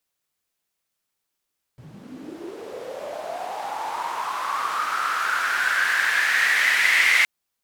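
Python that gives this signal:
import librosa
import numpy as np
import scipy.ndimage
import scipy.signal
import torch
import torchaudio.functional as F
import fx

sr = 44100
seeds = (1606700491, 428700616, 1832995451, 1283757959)

y = fx.riser_noise(sr, seeds[0], length_s=5.47, colour='white', kind='bandpass', start_hz=120.0, end_hz=2100.0, q=7.0, swell_db=13.5, law='linear')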